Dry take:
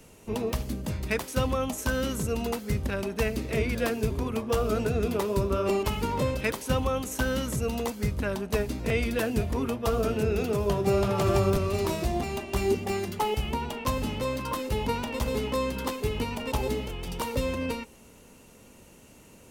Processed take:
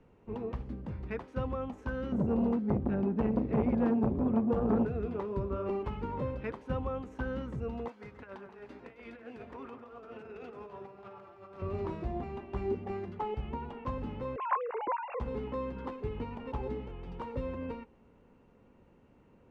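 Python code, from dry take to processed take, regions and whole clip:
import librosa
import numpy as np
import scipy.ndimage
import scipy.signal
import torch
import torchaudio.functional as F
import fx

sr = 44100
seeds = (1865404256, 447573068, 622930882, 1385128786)

y = fx.chain(x, sr, fx.peak_eq(hz=220.0, db=15.0, octaves=1.7),
    fx.transformer_sat(knee_hz=550.0), at=(2.12, 4.85))
y = fx.chain(y, sr, fx.highpass(hz=1200.0, slope=6),
    fx.over_compress(threshold_db=-38.0, ratio=-0.5),
    fx.echo_alternate(ms=133, hz=2000.0, feedback_pct=56, wet_db=-7.5), at=(7.88, 11.62))
y = fx.chain(y, sr, fx.sine_speech(),
    fx.peak_eq(hz=1200.0, db=8.0, octaves=1.2), at=(14.36, 15.2))
y = scipy.signal.sosfilt(scipy.signal.butter(2, 1500.0, 'lowpass', fs=sr, output='sos'), y)
y = fx.notch(y, sr, hz=630.0, q=12.0)
y = y * 10.0 ** (-7.5 / 20.0)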